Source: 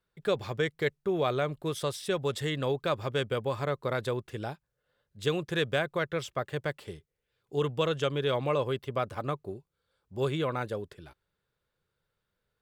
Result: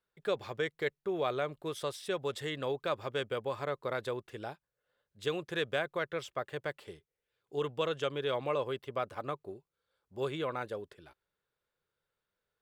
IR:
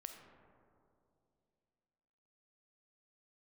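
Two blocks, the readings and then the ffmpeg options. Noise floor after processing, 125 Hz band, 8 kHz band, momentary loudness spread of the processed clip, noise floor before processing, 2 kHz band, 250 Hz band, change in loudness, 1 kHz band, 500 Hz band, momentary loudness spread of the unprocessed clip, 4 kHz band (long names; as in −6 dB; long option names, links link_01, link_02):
below −85 dBFS, −10.5 dB, −6.5 dB, 11 LU, −83 dBFS, −3.5 dB, −7.0 dB, −4.5 dB, −3.5 dB, −4.0 dB, 10 LU, −4.5 dB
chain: -af "bass=frequency=250:gain=-8,treble=frequency=4000:gain=-3,volume=-3.5dB"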